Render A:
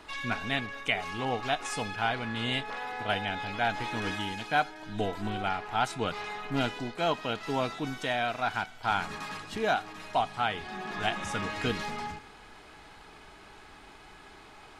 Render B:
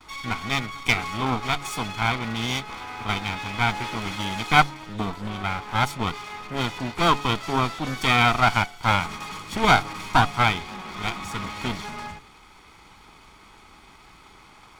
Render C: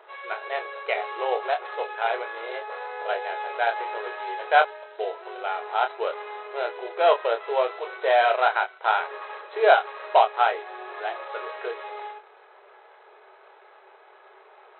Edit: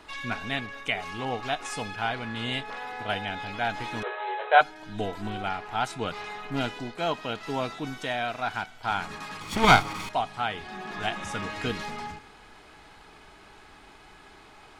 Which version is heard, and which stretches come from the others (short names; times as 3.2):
A
4.03–4.61 from C
9.41–10.09 from B